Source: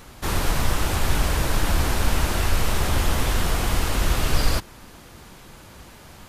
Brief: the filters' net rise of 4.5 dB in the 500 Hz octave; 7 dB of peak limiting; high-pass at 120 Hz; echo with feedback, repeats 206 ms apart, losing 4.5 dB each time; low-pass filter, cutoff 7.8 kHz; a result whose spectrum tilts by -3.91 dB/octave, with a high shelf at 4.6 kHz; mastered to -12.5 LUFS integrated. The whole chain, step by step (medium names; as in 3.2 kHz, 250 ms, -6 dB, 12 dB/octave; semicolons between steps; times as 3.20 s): high-pass 120 Hz; low-pass 7.8 kHz; peaking EQ 500 Hz +5.5 dB; treble shelf 4.6 kHz +8.5 dB; peak limiter -18.5 dBFS; feedback delay 206 ms, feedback 60%, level -4.5 dB; trim +13 dB